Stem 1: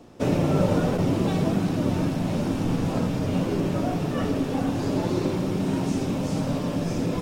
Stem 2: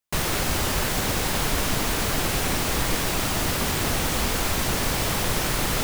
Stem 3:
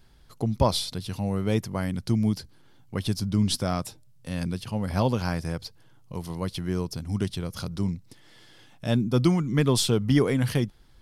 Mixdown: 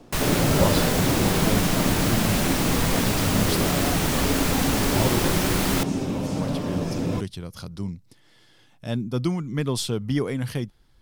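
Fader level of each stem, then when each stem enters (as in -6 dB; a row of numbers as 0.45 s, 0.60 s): -0.5 dB, -0.5 dB, -3.5 dB; 0.00 s, 0.00 s, 0.00 s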